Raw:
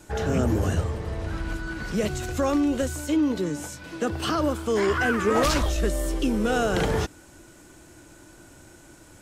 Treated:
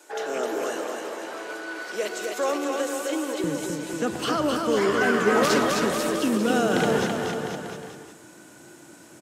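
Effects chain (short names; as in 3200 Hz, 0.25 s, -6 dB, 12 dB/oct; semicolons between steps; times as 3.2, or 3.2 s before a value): HPF 380 Hz 24 dB/oct, from 3.44 s 140 Hz; bouncing-ball echo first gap 0.26 s, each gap 0.9×, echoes 5; reverb RT60 0.55 s, pre-delay 0.101 s, DRR 12 dB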